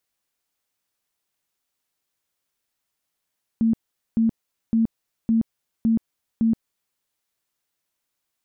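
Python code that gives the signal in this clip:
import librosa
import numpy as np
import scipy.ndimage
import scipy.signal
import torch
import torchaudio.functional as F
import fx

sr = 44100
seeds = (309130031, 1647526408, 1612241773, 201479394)

y = fx.tone_burst(sr, hz=226.0, cycles=28, every_s=0.56, bursts=6, level_db=-15.5)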